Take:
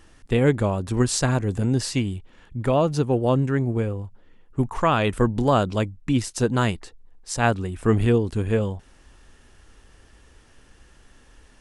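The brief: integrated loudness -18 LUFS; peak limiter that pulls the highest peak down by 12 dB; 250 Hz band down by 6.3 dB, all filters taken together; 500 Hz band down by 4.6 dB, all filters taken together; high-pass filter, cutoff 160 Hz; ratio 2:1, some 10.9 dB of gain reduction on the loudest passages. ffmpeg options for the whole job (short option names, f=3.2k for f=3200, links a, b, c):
-af "highpass=160,equalizer=f=250:t=o:g=-5.5,equalizer=f=500:t=o:g=-4,acompressor=threshold=-38dB:ratio=2,volume=22dB,alimiter=limit=-6dB:level=0:latency=1"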